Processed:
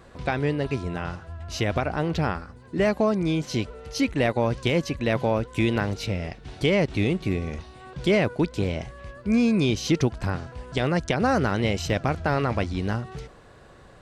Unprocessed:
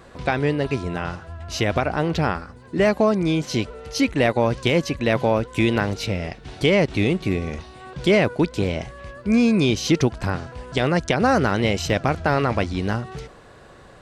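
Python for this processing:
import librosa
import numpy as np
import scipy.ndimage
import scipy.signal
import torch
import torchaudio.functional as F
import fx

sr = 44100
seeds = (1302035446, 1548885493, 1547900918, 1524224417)

y = fx.low_shelf(x, sr, hz=150.0, db=4.0)
y = y * librosa.db_to_amplitude(-4.5)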